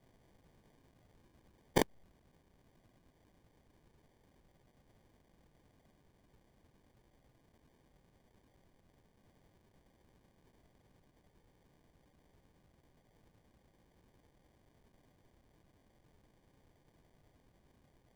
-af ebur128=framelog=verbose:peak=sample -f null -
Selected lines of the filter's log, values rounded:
Integrated loudness:
  I:         -35.8 LUFS
  Threshold: -55.9 LUFS
Loudness range:
  LRA:         0.0 LU
  Threshold: -63.7 LUFS
  LRA low:   -43.5 LUFS
  LRA high:  -43.5 LUFS
Sample peak:
  Peak:      -15.6 dBFS